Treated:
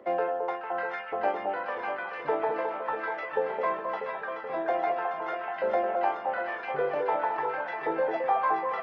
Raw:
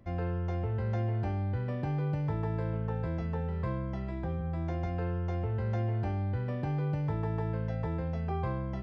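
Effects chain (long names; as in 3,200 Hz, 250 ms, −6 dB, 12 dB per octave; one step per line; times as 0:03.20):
reverb reduction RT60 1.4 s
three-way crossover with the lows and the highs turned down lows −22 dB, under 170 Hz, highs −21 dB, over 3,700 Hz
in parallel at −0.5 dB: brickwall limiter −34.5 dBFS, peak gain reduction 7 dB
on the sum: auto-filter high-pass saw up 0.89 Hz 450–2,100 Hz
on a send: delay that swaps between a low-pass and a high-pass 214 ms, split 1,100 Hz, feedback 82%, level −4 dB
on the sum: level +5.5 dB
Opus 20 kbit/s 48,000 Hz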